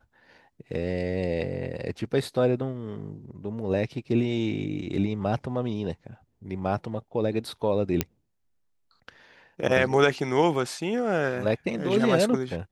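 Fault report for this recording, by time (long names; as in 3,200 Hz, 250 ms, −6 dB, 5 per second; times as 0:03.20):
0:08.01: click −7 dBFS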